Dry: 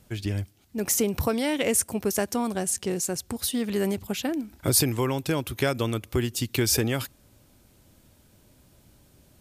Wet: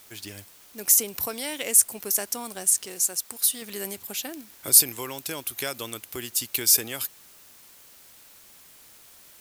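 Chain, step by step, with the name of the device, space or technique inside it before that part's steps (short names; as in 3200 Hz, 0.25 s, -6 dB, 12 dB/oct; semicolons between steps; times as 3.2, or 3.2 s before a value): turntable without a phono preamp (RIAA curve recording; white noise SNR 25 dB); 2.86–3.62 low shelf 360 Hz -6.5 dB; gain -6 dB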